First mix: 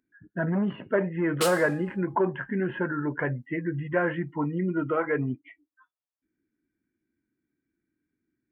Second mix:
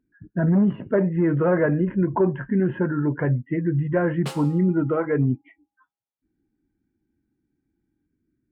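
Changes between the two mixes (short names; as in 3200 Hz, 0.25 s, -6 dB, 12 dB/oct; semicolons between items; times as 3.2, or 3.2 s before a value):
background: entry +2.85 s; master: add tilt -3.5 dB/oct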